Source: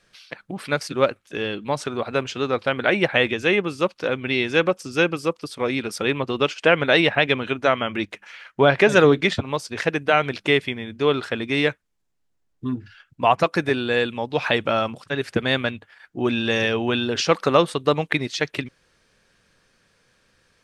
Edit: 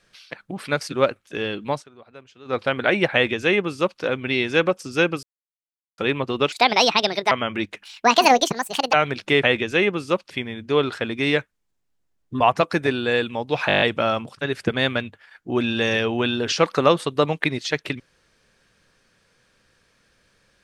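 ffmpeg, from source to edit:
-filter_complex "[0:a]asplit=19[a][b][c][d][e][f][g][h][i][j][k][l][m][n][o][p][q][r][s];[a]atrim=end=1.83,asetpts=PTS-STARTPTS,afade=t=out:st=1.69:d=0.14:c=qsin:silence=0.0891251[t];[b]atrim=start=1.83:end=2.45,asetpts=PTS-STARTPTS,volume=-21dB[u];[c]atrim=start=2.45:end=5.23,asetpts=PTS-STARTPTS,afade=t=in:d=0.14:c=qsin:silence=0.0891251,afade=t=out:st=2.776:d=0.004:c=hsin[v];[d]atrim=start=5.23:end=5.98,asetpts=PTS-STARTPTS,volume=0[w];[e]atrim=start=5.98:end=6.524,asetpts=PTS-STARTPTS,afade=t=in:d=0.004:c=hsin[x];[f]atrim=start=6.52:end=7.71,asetpts=PTS-STARTPTS,asetrate=66150,aresample=44100[y];[g]atrim=start=7.706:end=8.234[z];[h]atrim=start=8.23:end=10.11,asetpts=PTS-STARTPTS,asetrate=75411,aresample=44100,atrim=end_sample=48484,asetpts=PTS-STARTPTS[aa];[i]atrim=start=10.106:end=10.612[ab];[j]atrim=start=3.138:end=4.012[ac];[k]atrim=start=10.608:end=12.712[ad];[l]atrim=start=13.228:end=14.522[ae];[m]atrim=start=14.498:end=14.522[af];[n]atrim=start=14.498:end=14.522[ag];[o]atrim=start=14.498:end=14.522[ah];[p]atrim=start=14.498:end=14.522[ai];[q]atrim=start=14.498:end=14.522[aj];[r]atrim=start=14.498:end=14.522[ak];[s]atrim=start=14.498[al];[t][u][v][w][x]concat=n=5:v=0:a=1[am];[am][y]acrossfade=d=0.004:c1=hsin:c2=hsin[an];[an][z]acrossfade=d=0.004:c1=hsin:c2=hsin[ao];[ao][aa]acrossfade=d=0.004:c1=hsin:c2=hsin[ap];[ap][ab]acrossfade=d=0.004:c1=hsin:c2=hsin[aq];[aq][ac]acrossfade=d=0.004:c1=hsin:c2=hsin[ar];[ar][ad]acrossfade=d=0.004:c1=hsin:c2=hsin[as];[as][ae]acrossfade=d=0.004:c1=hsin:c2=hsin[at];[at][af]acrossfade=d=0.004:c1=hsin:c2=hsin[au];[au][ag]acrossfade=d=0.004:c1=hsin:c2=hsin[av];[av][ah]acrossfade=d=0.004:c1=hsin:c2=hsin[aw];[aw][ai]acrossfade=d=0.004:c1=hsin:c2=hsin[ax];[ax][aj]acrossfade=d=0.004:c1=hsin:c2=hsin[ay];[ay][ak]acrossfade=d=0.004:c1=hsin:c2=hsin[az];[az][al]acrossfade=d=0.004:c1=hsin:c2=hsin"

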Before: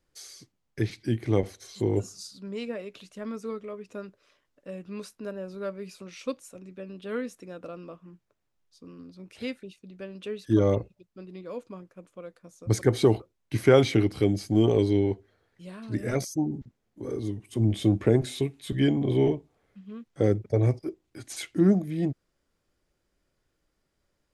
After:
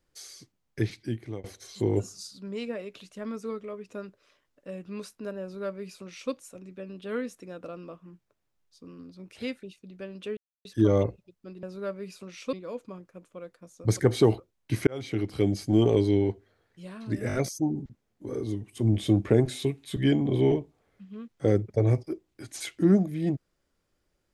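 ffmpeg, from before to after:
-filter_complex "[0:a]asplit=9[a][b][c][d][e][f][g][h][i];[a]atrim=end=1.44,asetpts=PTS-STARTPTS,afade=t=out:st=0.83:d=0.61:silence=0.0707946[j];[b]atrim=start=1.44:end=10.37,asetpts=PTS-STARTPTS,afade=t=in:d=0.004:c=hsin:silence=0.0707946,afade=t=out:st=8.926:d=0.004:c=hsin,apad=pad_dur=0.28[k];[c]atrim=start=10.37:end=11.352,asetpts=PTS-STARTPTS,afade=t=in:d=0.004:c=hsin[l];[d]atrim=start=5.418:end=6.322[m];[e]atrim=start=11.348:end=13.69,asetpts=PTS-STARTPTS,afade=t=out:st=2.338:d=0.004:c=hsin[n];[f]atrim=start=13.69:end=16.122,asetpts=PTS-STARTPTS,afade=t=in:d=0.66[o];[g]atrim=start=16.098:end=16.122[p];[h]atrim=start=16.098:end=16.122[q];[i]atrim=start=16.098[r];[j][k][l]concat=n=3:v=0:a=1[s];[s][m]acrossfade=d=0.004:c1=hsin:c2=hsin[t];[n][o]concat=n=2:v=0:a=1[u];[t][u]acrossfade=d=0.004:c1=hsin:c2=hsin[v];[v][p]acrossfade=d=0.004:c1=hsin:c2=hsin[w];[w][q]acrossfade=d=0.004:c1=hsin:c2=hsin[x];[x][r]acrossfade=d=0.004:c1=hsin:c2=hsin"

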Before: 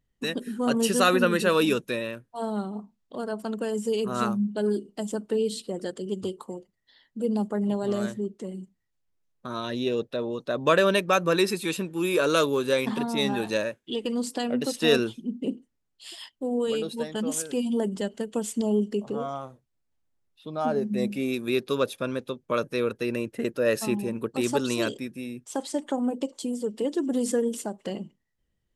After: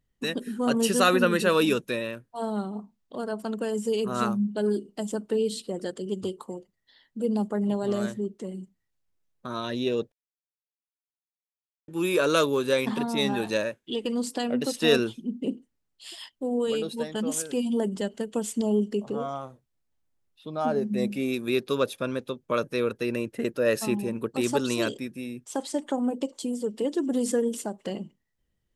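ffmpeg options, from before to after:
-filter_complex "[0:a]asplit=3[a][b][c];[a]atrim=end=10.12,asetpts=PTS-STARTPTS,afade=t=out:st=10.116:d=0.004:c=hsin[d];[b]atrim=start=10.12:end=11.88,asetpts=PTS-STARTPTS,volume=0[e];[c]atrim=start=11.88,asetpts=PTS-STARTPTS,afade=t=in:d=0.004:c=hsin[f];[d][e][f]concat=n=3:v=0:a=1"

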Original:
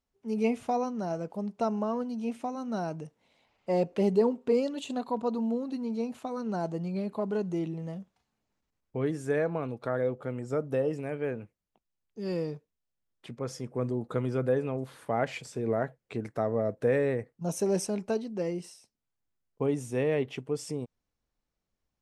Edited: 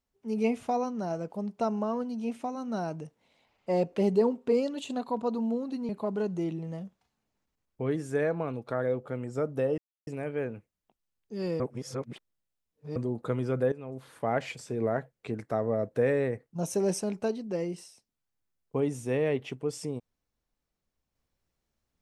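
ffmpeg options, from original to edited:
-filter_complex "[0:a]asplit=6[a][b][c][d][e][f];[a]atrim=end=5.892[g];[b]atrim=start=7.038:end=10.93,asetpts=PTS-STARTPTS,afade=t=out:st=3.888:d=0.004:c=hsin,apad=pad_dur=0.29[h];[c]atrim=start=10.93:end=12.462,asetpts=PTS-STARTPTS,afade=t=in:d=0.004:c=hsin[i];[d]atrim=start=12.458:end=13.822,asetpts=PTS-STARTPTS,areverse[j];[e]atrim=start=13.818:end=14.58,asetpts=PTS-STARTPTS,afade=t=out:st=0.758:d=0.004:c=hsin:silence=0.188365[k];[f]atrim=start=14.58,asetpts=PTS-STARTPTS,afade=t=in:d=0.52:silence=0.188365[l];[h][i]concat=n=2:v=0:a=1[m];[g][m]acrossfade=d=0.004:c1=hsin:c2=hsin[n];[n][j]acrossfade=d=0.004:c1=hsin:c2=hsin[o];[k][l]concat=n=2:v=0:a=1[p];[o][p]acrossfade=d=0.004:c1=hsin:c2=hsin"

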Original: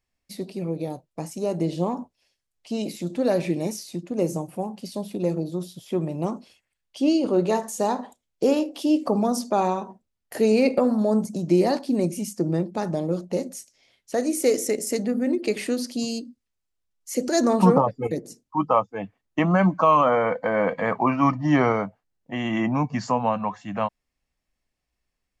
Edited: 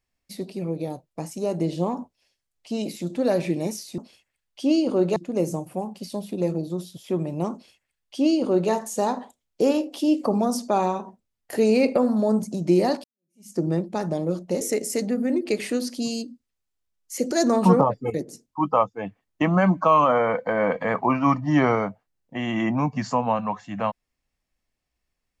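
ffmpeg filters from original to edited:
-filter_complex "[0:a]asplit=5[a][b][c][d][e];[a]atrim=end=3.982[f];[b]atrim=start=6.348:end=7.532[g];[c]atrim=start=3.978:end=11.86,asetpts=PTS-STARTPTS,afade=t=out:st=7.878:d=0.004:c=hsin[h];[d]atrim=start=11.86:end=13.432,asetpts=PTS-STARTPTS,afade=t=in:d=0.48:c=exp[i];[e]atrim=start=14.578[j];[f][g]acrossfade=d=0.004:c1=hsin:c2=hsin[k];[h][i]concat=n=2:v=0:a=1[l];[k][l]acrossfade=d=0.004:c1=hsin:c2=hsin[m];[m][j]acrossfade=d=0.004:c1=hsin:c2=hsin"

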